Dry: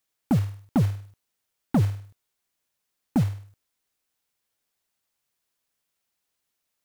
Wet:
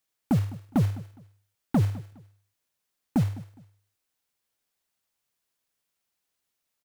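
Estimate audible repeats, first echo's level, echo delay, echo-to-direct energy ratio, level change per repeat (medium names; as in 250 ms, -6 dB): 2, -19.0 dB, 206 ms, -18.5 dB, -11.0 dB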